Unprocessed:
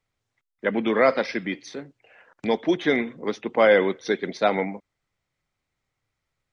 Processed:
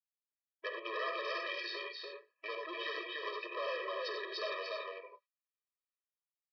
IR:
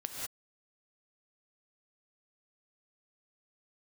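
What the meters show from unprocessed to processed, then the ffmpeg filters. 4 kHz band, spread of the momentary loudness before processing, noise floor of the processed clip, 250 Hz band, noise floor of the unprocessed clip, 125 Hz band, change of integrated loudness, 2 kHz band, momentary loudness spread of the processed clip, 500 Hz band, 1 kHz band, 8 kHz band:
−6.0 dB, 15 LU, below −85 dBFS, −28.0 dB, −82 dBFS, below −40 dB, −16.5 dB, −12.5 dB, 9 LU, −18.5 dB, −13.5 dB, can't be measured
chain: -filter_complex "[0:a]asplit=2[link_01][link_02];[link_02]adelay=14,volume=-14dB[link_03];[link_01][link_03]amix=inputs=2:normalize=0,dynaudnorm=framelen=150:gausssize=9:maxgain=11.5dB,agate=range=-32dB:threshold=-39dB:ratio=16:detection=peak,acompressor=threshold=-23dB:ratio=6,aecho=1:1:291:0.631[link_04];[1:a]atrim=start_sample=2205,afade=type=out:start_time=0.21:duration=0.01,atrim=end_sample=9702,asetrate=70560,aresample=44100[link_05];[link_04][link_05]afir=irnorm=-1:irlink=0,aresample=11025,asoftclip=type=tanh:threshold=-31dB,aresample=44100,highpass=900,afftfilt=real='re*eq(mod(floor(b*sr/1024/330),2),1)':imag='im*eq(mod(floor(b*sr/1024/330),2),1)':win_size=1024:overlap=0.75,volume=6dB"

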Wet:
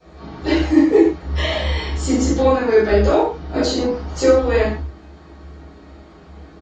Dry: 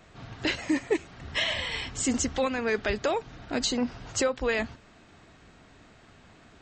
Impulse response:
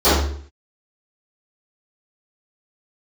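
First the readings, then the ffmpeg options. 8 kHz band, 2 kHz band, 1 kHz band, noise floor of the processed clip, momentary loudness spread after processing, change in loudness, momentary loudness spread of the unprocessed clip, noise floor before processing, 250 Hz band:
+0.5 dB, +4.5 dB, +11.0 dB, −43 dBFS, 9 LU, +11.5 dB, 5 LU, −56 dBFS, +13.0 dB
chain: -filter_complex "[0:a]aecho=1:1:6.4:0.37,aeval=exprs='0.211*(cos(1*acos(clip(val(0)/0.211,-1,1)))-cos(1*PI/2))+0.00376*(cos(4*acos(clip(val(0)/0.211,-1,1)))-cos(4*PI/2))+0.00335*(cos(6*acos(clip(val(0)/0.211,-1,1)))-cos(6*PI/2))':channel_layout=same[link_01];[1:a]atrim=start_sample=2205,afade=type=out:start_time=0.24:duration=0.01,atrim=end_sample=11025[link_02];[link_01][link_02]afir=irnorm=-1:irlink=0,volume=-17.5dB"

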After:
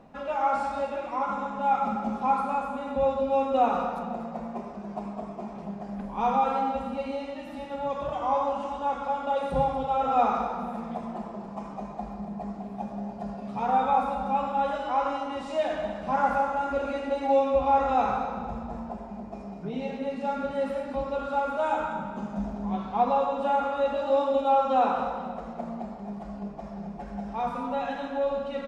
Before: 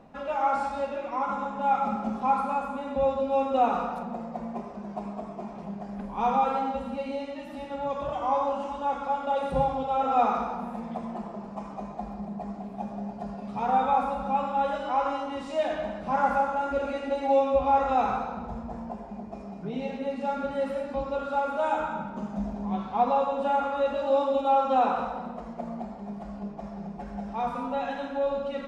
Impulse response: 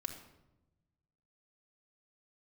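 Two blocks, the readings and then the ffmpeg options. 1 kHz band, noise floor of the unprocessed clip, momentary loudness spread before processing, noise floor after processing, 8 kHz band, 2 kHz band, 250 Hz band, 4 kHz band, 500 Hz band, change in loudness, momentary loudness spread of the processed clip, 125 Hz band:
0.0 dB, −41 dBFS, 14 LU, −40 dBFS, can't be measured, 0.0 dB, 0.0 dB, +0.5 dB, +0.5 dB, 0.0 dB, 14 LU, 0.0 dB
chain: -af "aecho=1:1:244|488|732|976|1220:0.211|0.0993|0.0467|0.0219|0.0103"

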